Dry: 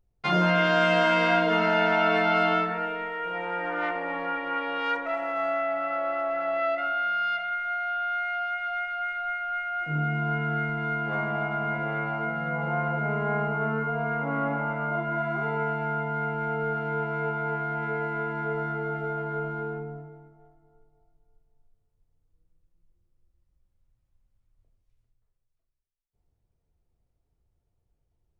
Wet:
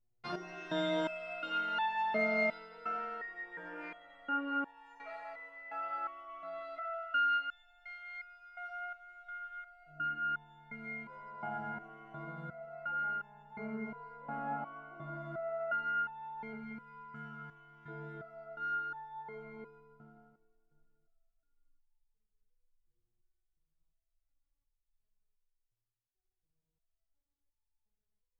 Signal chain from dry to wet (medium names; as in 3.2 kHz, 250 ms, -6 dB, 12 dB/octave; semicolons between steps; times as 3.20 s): 16.53–17.88 s: high-order bell 510 Hz -11 dB; multi-head delay 86 ms, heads all three, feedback 55%, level -13 dB; resonator arpeggio 2.8 Hz 120–880 Hz